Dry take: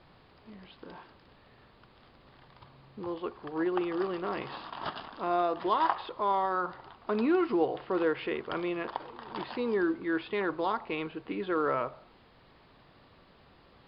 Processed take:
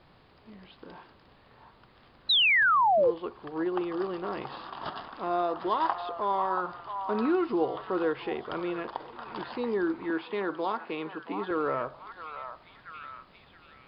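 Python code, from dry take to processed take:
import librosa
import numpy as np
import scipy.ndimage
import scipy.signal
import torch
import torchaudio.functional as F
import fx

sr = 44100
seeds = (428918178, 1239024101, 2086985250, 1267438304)

p1 = fx.highpass(x, sr, hz=160.0, slope=24, at=(10.1, 11.51))
p2 = p1 + fx.echo_stepped(p1, sr, ms=678, hz=1000.0, octaves=0.7, feedback_pct=70, wet_db=-6, dry=0)
p3 = fx.dynamic_eq(p2, sr, hz=2200.0, q=1.6, threshold_db=-47.0, ratio=4.0, max_db=-4)
y = fx.spec_paint(p3, sr, seeds[0], shape='fall', start_s=2.29, length_s=0.82, low_hz=450.0, high_hz=4100.0, level_db=-22.0)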